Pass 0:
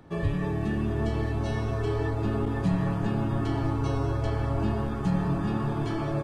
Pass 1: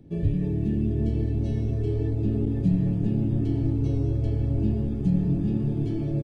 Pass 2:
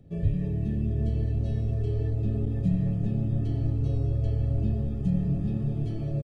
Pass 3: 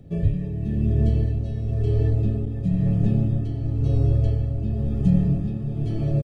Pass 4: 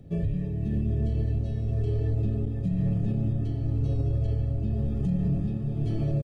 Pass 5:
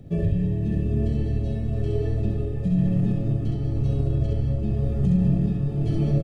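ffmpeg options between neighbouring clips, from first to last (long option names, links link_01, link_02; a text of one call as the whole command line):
ffmpeg -i in.wav -af "firequalizer=gain_entry='entry(280,0);entry(1100,-29);entry(2300,-13)':delay=0.05:min_phase=1,volume=3.5dB" out.wav
ffmpeg -i in.wav -af "aecho=1:1:1.6:0.54,volume=-3.5dB" out.wav
ffmpeg -i in.wav -af "tremolo=f=0.98:d=0.58,volume=7.5dB" out.wav
ffmpeg -i in.wav -af "alimiter=limit=-17dB:level=0:latency=1:release=50,volume=-2dB" out.wav
ffmpeg -i in.wav -af "aecho=1:1:67.06|195.3:0.708|0.282,volume=4dB" out.wav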